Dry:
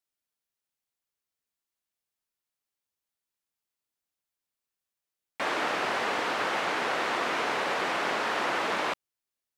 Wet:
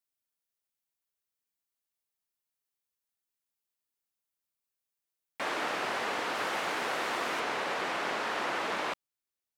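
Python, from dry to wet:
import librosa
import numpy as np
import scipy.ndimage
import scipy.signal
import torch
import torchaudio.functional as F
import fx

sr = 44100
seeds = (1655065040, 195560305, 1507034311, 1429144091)

y = fx.high_shelf(x, sr, hz=9200.0, db=fx.steps((0.0, 6.5), (6.34, 12.0), (7.39, 2.0)))
y = y * librosa.db_to_amplitude(-4.0)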